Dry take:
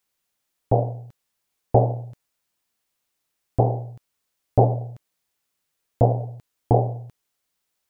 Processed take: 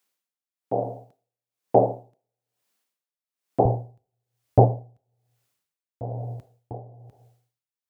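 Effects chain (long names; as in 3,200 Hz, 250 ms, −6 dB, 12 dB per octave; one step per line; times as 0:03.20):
high-pass filter 170 Hz 24 dB per octave, from 0:03.65 50 Hz
convolution reverb RT60 0.80 s, pre-delay 17 ms, DRR 16.5 dB
tremolo with a sine in dB 1.1 Hz, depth 23 dB
level +2 dB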